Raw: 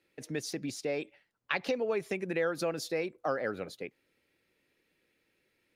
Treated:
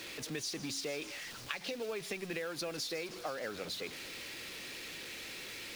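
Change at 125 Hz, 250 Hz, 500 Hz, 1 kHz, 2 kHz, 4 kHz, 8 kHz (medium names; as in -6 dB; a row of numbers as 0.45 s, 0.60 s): -5.0 dB, -6.0 dB, -7.5 dB, -6.5 dB, -3.0 dB, +5.0 dB, +3.5 dB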